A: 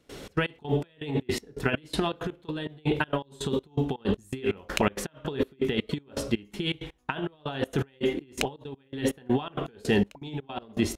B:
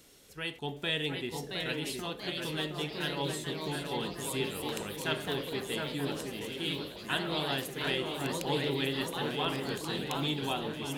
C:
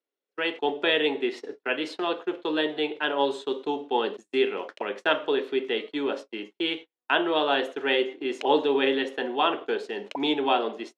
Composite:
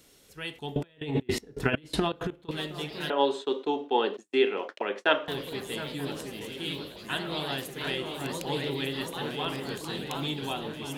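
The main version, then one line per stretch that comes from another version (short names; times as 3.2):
B
0.76–2.51 from A
3.1–5.28 from C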